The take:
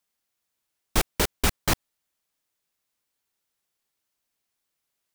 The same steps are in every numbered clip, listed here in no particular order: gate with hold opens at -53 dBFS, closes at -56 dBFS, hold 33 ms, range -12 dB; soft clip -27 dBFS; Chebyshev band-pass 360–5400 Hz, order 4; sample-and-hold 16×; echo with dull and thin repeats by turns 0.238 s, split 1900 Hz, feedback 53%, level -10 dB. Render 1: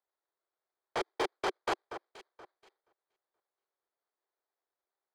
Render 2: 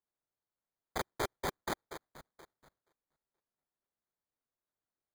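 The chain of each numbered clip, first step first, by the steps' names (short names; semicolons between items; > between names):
sample-and-hold > Chebyshev band-pass > soft clip > echo with dull and thin repeats by turns > gate with hold; soft clip > echo with dull and thin repeats by turns > gate with hold > Chebyshev band-pass > sample-and-hold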